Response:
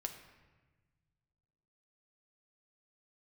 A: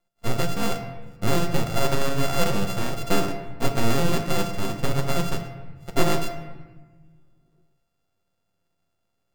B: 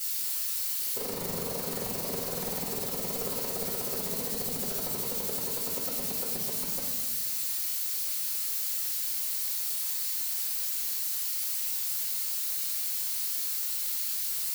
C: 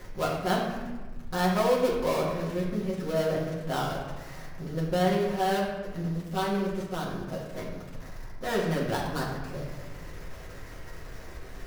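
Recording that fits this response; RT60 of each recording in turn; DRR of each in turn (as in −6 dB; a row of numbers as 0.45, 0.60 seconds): A; 1.3, 1.3, 1.3 seconds; 4.5, −10.0, −5.5 decibels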